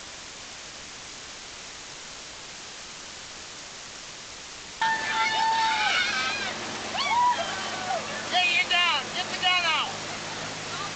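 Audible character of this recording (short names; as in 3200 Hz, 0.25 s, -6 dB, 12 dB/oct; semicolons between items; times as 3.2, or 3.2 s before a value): a quantiser's noise floor 6-bit, dither triangular; G.722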